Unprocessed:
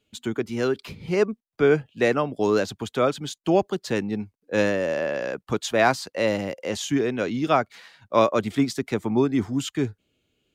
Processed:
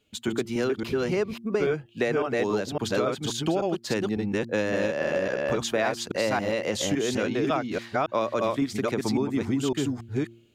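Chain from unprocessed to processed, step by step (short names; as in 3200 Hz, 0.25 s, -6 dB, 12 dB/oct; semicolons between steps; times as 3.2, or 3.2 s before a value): reverse delay 0.278 s, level -1 dB; de-hum 115.6 Hz, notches 3; compressor, threshold -25 dBFS, peak gain reduction 12 dB; gain +2.5 dB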